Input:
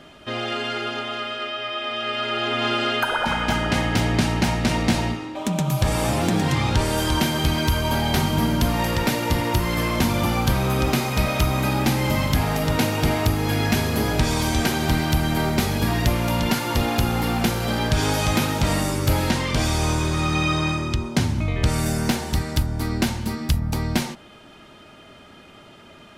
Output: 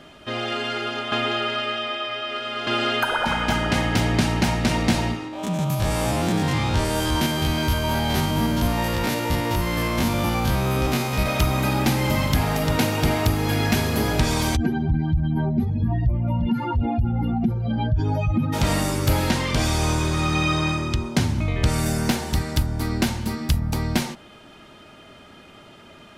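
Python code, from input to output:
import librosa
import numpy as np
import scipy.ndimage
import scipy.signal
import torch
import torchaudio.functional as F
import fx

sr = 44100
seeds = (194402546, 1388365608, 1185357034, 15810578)

y = fx.spec_steps(x, sr, hold_ms=50, at=(5.28, 11.26))
y = fx.spec_expand(y, sr, power=2.6, at=(14.55, 18.52), fade=0.02)
y = fx.edit(y, sr, fx.reverse_span(start_s=1.12, length_s=1.55), tone=tone)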